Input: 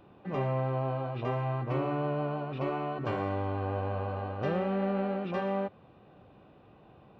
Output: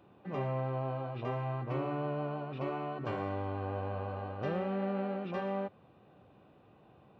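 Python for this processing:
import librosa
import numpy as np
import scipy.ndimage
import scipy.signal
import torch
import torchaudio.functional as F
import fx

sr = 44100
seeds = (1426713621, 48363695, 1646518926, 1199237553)

y = scipy.signal.sosfilt(scipy.signal.butter(2, 62.0, 'highpass', fs=sr, output='sos'), x)
y = y * 10.0 ** (-4.0 / 20.0)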